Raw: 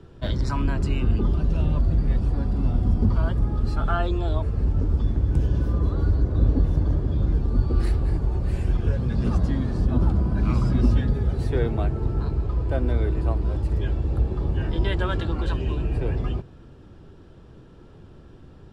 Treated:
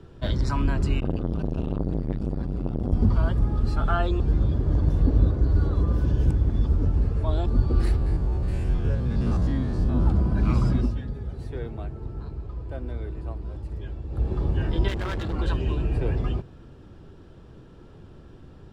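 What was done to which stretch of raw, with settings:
0:01.00–0:02.93: saturating transformer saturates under 390 Hz
0:04.20–0:07.46: reverse
0:07.96–0:10.06: spectrum averaged block by block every 50 ms
0:10.70–0:14.32: duck −10 dB, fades 0.23 s
0:14.88–0:15.34: hard clipping −26 dBFS

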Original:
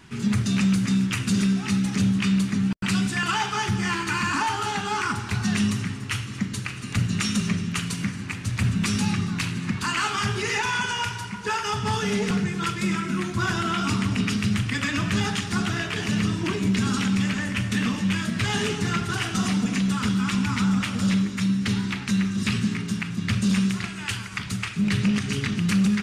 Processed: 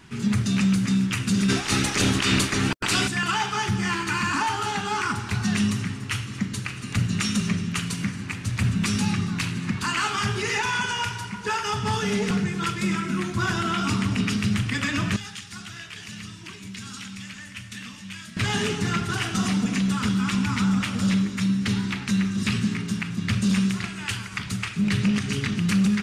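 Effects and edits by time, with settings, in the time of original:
0:01.48–0:03.07: ceiling on every frequency bin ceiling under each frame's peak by 22 dB
0:15.16–0:18.37: guitar amp tone stack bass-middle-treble 5-5-5

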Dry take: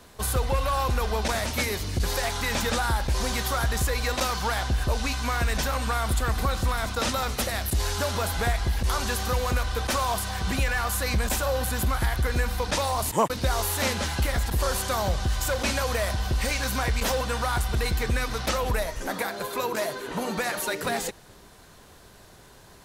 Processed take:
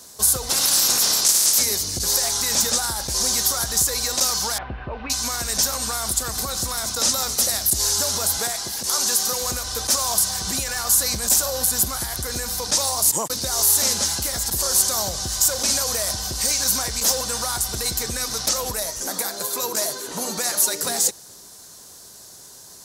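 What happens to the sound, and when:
0:00.49–0:01.58: ceiling on every frequency bin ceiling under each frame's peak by 29 dB
0:04.58–0:05.10: elliptic low-pass filter 2,600 Hz, stop band 70 dB
0:08.38–0:09.41: Bessel high-pass filter 200 Hz
whole clip: brickwall limiter −17.5 dBFS; high-pass filter 150 Hz 6 dB per octave; high shelf with overshoot 3,900 Hz +13.5 dB, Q 1.5

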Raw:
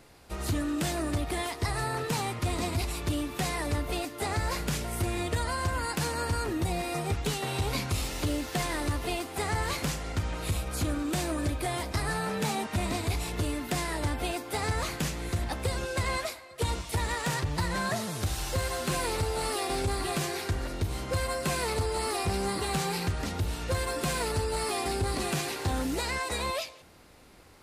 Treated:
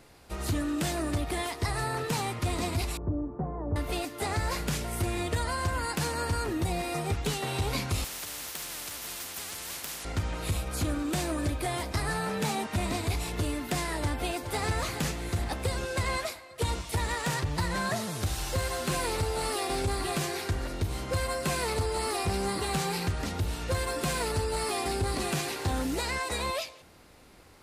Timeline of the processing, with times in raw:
0:02.97–0:03.76: Bessel low-pass filter 680 Hz, order 6
0:08.04–0:10.05: every bin compressed towards the loudest bin 10 to 1
0:14.00–0:14.69: delay throw 420 ms, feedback 50%, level −9.5 dB

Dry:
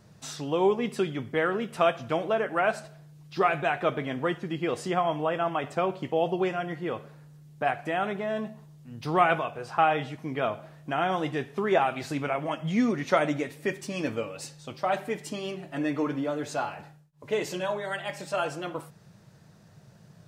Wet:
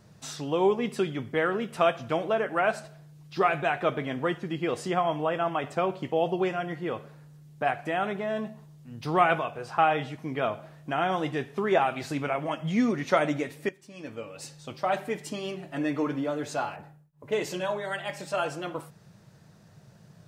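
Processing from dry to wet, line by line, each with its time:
0:13.69–0:14.54: fade in quadratic, from −16 dB
0:16.76–0:17.32: parametric band 4,900 Hz −10.5 dB 2.3 octaves

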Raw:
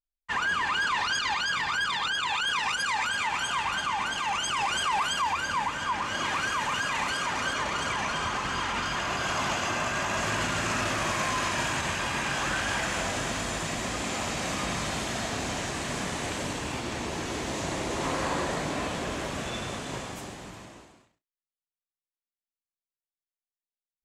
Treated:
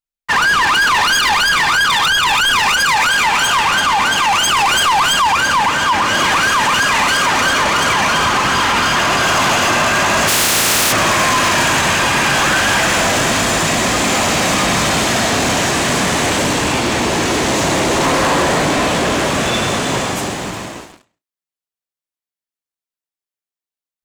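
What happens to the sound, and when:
0:10.27–0:10.91: compressing power law on the bin magnitudes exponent 0.26
whole clip: low-shelf EQ 69 Hz −10 dB; leveller curve on the samples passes 3; level +8.5 dB

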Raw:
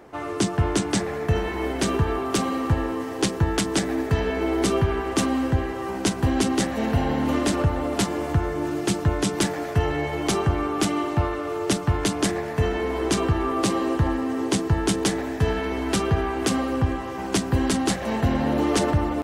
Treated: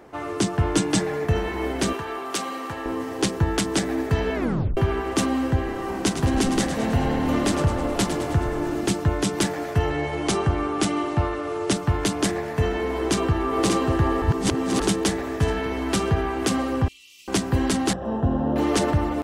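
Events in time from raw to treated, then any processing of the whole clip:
0:00.74–0:01.25: comb filter 6.4 ms
0:01.93–0:02.86: high-pass filter 780 Hz 6 dB per octave
0:04.35: tape stop 0.42 s
0:05.56–0:08.93: echo with shifted repeats 105 ms, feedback 59%, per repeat −38 Hz, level −9.5 dB
0:09.90–0:11.76: Butterworth low-pass 11,000 Hz 96 dB per octave
0:12.93–0:13.70: delay throw 590 ms, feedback 55%, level −3.5 dB
0:14.22–0:14.80: reverse
0:16.88–0:17.28: elliptic high-pass filter 2,600 Hz
0:17.93–0:18.56: moving average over 20 samples

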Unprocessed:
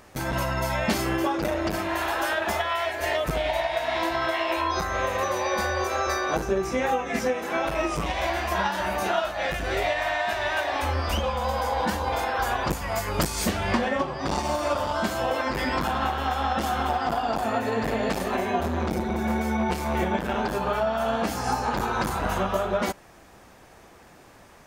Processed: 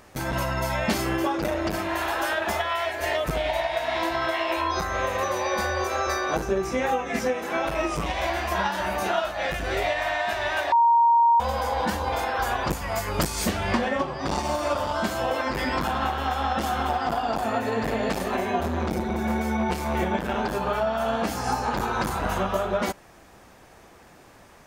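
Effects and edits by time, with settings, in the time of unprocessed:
0:10.72–0:11.40: beep over 934 Hz −14.5 dBFS

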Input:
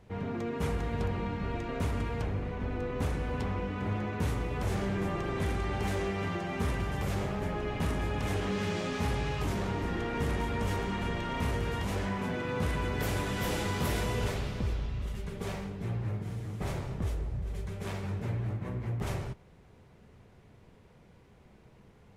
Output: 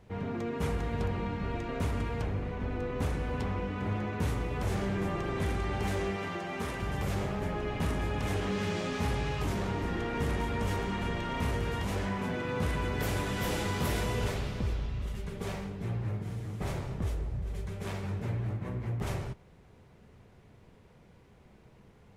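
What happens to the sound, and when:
0:06.16–0:06.83: low-shelf EQ 150 Hz −12 dB

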